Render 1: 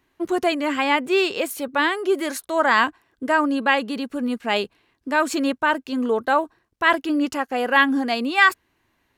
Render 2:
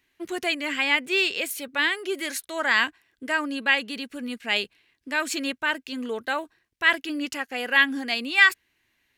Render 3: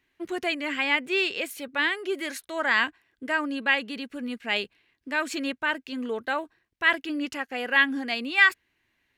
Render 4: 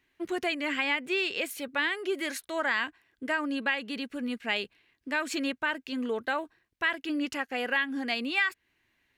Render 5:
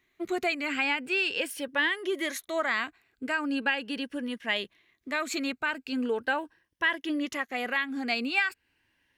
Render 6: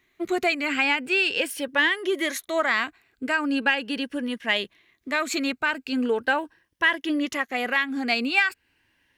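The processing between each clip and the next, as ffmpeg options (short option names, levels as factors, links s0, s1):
-af "highshelf=f=1500:t=q:w=1.5:g=8.5,volume=0.376"
-af "highshelf=f=3900:g=-9"
-af "acompressor=threshold=0.0562:ratio=4"
-af "afftfilt=real='re*pow(10,7/40*sin(2*PI*(1.2*log(max(b,1)*sr/1024/100)/log(2)-(0.4)*(pts-256)/sr)))':imag='im*pow(10,7/40*sin(2*PI*(1.2*log(max(b,1)*sr/1024/100)/log(2)-(0.4)*(pts-256)/sr)))':win_size=1024:overlap=0.75"
-af "aeval=exprs='0.237*(cos(1*acos(clip(val(0)/0.237,-1,1)))-cos(1*PI/2))+0.00266*(cos(7*acos(clip(val(0)/0.237,-1,1)))-cos(7*PI/2))':c=same,volume=1.88"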